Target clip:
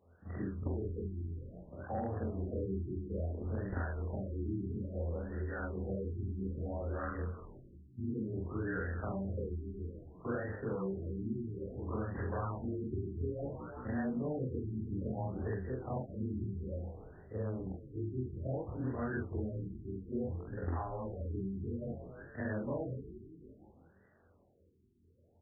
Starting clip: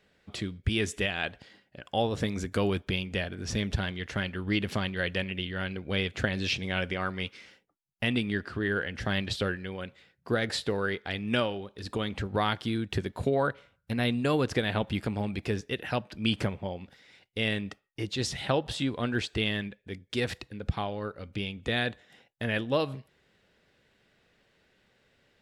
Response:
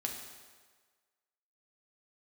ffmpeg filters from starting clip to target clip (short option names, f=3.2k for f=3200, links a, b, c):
-filter_complex "[0:a]afftfilt=real='re':imag='-im':win_size=4096:overlap=0.75,equalizer=f=85:t=o:w=0.34:g=12.5,flanger=delay=20:depth=5.9:speed=1.6,highshelf=f=10k:g=-2.5,acrossover=split=2900[a][b];[b]acompressor=threshold=-51dB:ratio=4:attack=1:release=60[c];[a][c]amix=inputs=2:normalize=0,asplit=7[d][e][f][g][h][i][j];[e]adelay=174,afreqshift=-53,volume=-17dB[k];[f]adelay=348,afreqshift=-106,volume=-21.4dB[l];[g]adelay=522,afreqshift=-159,volume=-25.9dB[m];[h]adelay=696,afreqshift=-212,volume=-30.3dB[n];[i]adelay=870,afreqshift=-265,volume=-34.7dB[o];[j]adelay=1044,afreqshift=-318,volume=-39.2dB[p];[d][k][l][m][n][o][p]amix=inputs=7:normalize=0,aeval=exprs='0.0501*(abs(mod(val(0)/0.0501+3,4)-2)-1)':c=same,acrossover=split=260|1400[q][r][s];[q]acompressor=threshold=-46dB:ratio=4[t];[r]acompressor=threshold=-48dB:ratio=4[u];[s]acompressor=threshold=-55dB:ratio=4[v];[t][u][v]amix=inputs=3:normalize=0,highpass=41,bandreject=f=50:t=h:w=6,bandreject=f=100:t=h:w=6,bandreject=f=150:t=h:w=6,bandreject=f=200:t=h:w=6,afftfilt=real='re*lt(b*sr/1024,400*pow(2000/400,0.5+0.5*sin(2*PI*0.59*pts/sr)))':imag='im*lt(b*sr/1024,400*pow(2000/400,0.5+0.5*sin(2*PI*0.59*pts/sr)))':win_size=1024:overlap=0.75,volume=8dB"